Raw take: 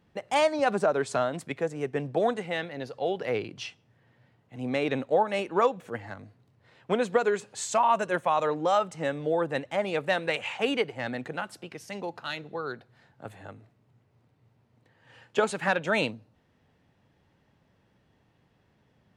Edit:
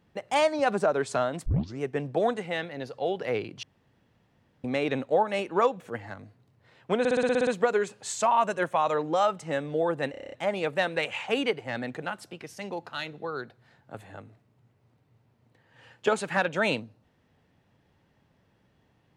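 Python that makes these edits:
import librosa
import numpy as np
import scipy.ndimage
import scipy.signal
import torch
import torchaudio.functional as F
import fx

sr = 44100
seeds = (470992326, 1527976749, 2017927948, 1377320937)

y = fx.edit(x, sr, fx.tape_start(start_s=1.46, length_s=0.34),
    fx.room_tone_fill(start_s=3.63, length_s=1.01),
    fx.stutter(start_s=6.99, slice_s=0.06, count=9),
    fx.stutter(start_s=9.63, slice_s=0.03, count=8), tone=tone)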